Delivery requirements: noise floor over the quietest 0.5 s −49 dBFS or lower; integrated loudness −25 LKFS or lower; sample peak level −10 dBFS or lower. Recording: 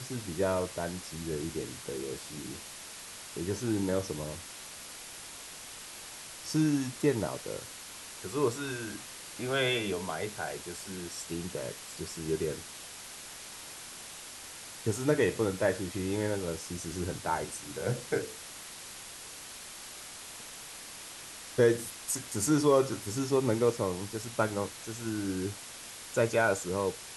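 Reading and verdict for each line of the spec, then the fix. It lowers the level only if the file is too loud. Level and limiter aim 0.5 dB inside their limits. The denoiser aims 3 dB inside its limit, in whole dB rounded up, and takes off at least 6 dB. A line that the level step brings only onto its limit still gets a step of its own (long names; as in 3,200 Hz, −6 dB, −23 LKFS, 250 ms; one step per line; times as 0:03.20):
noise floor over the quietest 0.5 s −46 dBFS: out of spec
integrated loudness −33.5 LKFS: in spec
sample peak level −12.5 dBFS: in spec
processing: broadband denoise 6 dB, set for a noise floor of −46 dBFS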